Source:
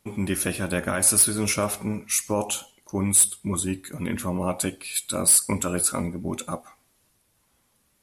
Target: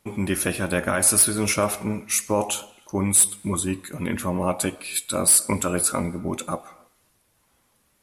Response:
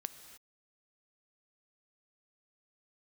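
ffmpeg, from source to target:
-filter_complex "[0:a]asplit=2[link_01][link_02];[link_02]bass=frequency=250:gain=-12,treble=frequency=4000:gain=-14[link_03];[1:a]atrim=start_sample=2205[link_04];[link_03][link_04]afir=irnorm=-1:irlink=0,volume=-3dB[link_05];[link_01][link_05]amix=inputs=2:normalize=0"

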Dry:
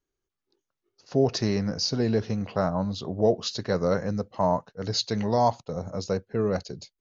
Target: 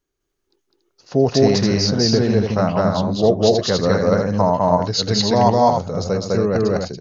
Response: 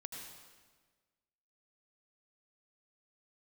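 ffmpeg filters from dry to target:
-af "aecho=1:1:204.1|282.8:1|0.562,volume=6dB"

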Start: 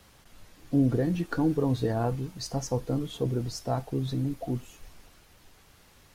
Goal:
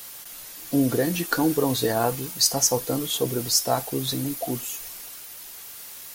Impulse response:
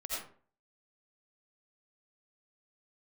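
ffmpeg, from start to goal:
-af "aemphasis=mode=production:type=riaa,volume=8.5dB"

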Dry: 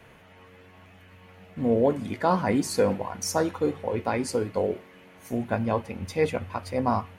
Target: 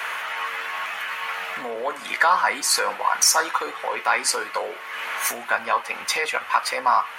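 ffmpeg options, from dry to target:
ffmpeg -i in.wav -af "acompressor=threshold=-43dB:ratio=2.5,apsyclip=33dB,highpass=frequency=1200:width_type=q:width=1.8,volume=-8.5dB" out.wav

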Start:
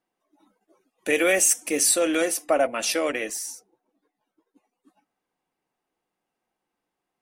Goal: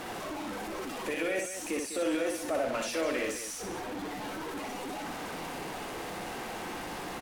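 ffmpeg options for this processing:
ffmpeg -i in.wav -af "aeval=exprs='val(0)+0.5*0.0631*sgn(val(0))':channel_layout=same,highshelf=frequency=10000:gain=10,alimiter=limit=-15.5dB:level=0:latency=1:release=23,aemphasis=mode=reproduction:type=50fm,aecho=1:1:61.22|201.2:0.631|0.316,volume=-9dB" out.wav

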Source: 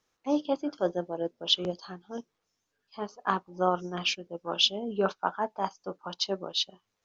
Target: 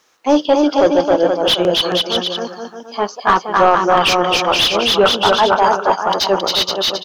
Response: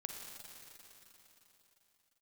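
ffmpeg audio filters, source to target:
-filter_complex "[0:a]aecho=1:1:270|472.5|624.4|738.3|823.7:0.631|0.398|0.251|0.158|0.1,crystalizer=i=4:c=0,asplit=2[link_01][link_02];[link_02]highpass=frequency=720:poles=1,volume=25dB,asoftclip=type=tanh:threshold=-0.5dB[link_03];[link_01][link_03]amix=inputs=2:normalize=0,lowpass=frequency=1100:poles=1,volume=-6dB,volume=3.5dB"

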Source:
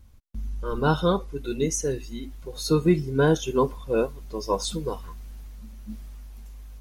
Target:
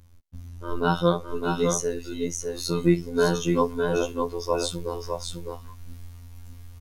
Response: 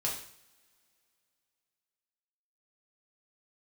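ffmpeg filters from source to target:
-af "asubboost=boost=7:cutoff=57,afftfilt=real='hypot(re,im)*cos(PI*b)':imag='0':win_size=2048:overlap=0.75,aecho=1:1:608:0.596,volume=3dB"

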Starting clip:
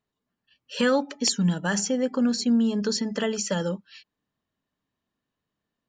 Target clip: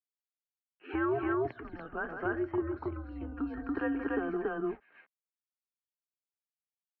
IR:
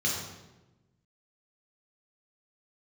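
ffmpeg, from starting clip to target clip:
-af "aeval=exprs='val(0)*gte(abs(val(0)),0.00355)':channel_layout=same,aecho=1:1:139.9|239.1:0.282|0.891,acompressor=threshold=-25dB:ratio=6,atempo=0.84,highpass=frequency=380:width_type=q:width=0.5412,highpass=frequency=380:width_type=q:width=1.307,lowpass=frequency=2100:width_type=q:width=0.5176,lowpass=frequency=2100:width_type=q:width=0.7071,lowpass=frequency=2100:width_type=q:width=1.932,afreqshift=-160"

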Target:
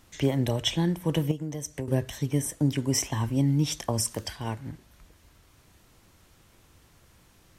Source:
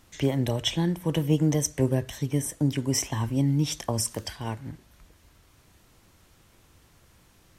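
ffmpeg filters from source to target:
ffmpeg -i in.wav -filter_complex "[0:a]asettb=1/sr,asplit=3[link_01][link_02][link_03];[link_01]atrim=end=1.314[link_04];[link_02]atrim=start=1.31:end=1.88,asetpts=PTS-STARTPTS,afade=type=in:duration=0.004:curve=qsin,afade=type=out:start_time=0.566:duration=0.004:curve=qsin,acompressor=threshold=-30dB:ratio=8[link_05];[link_03]atrim=start=1.876[link_06];[link_04][link_05]acrossfade=duration=0.004:curve1=hsin:curve2=qsin[link_07];[link_07][link_06]acrossfade=duration=0.004:curve1=qsin:curve2=hsin" out.wav

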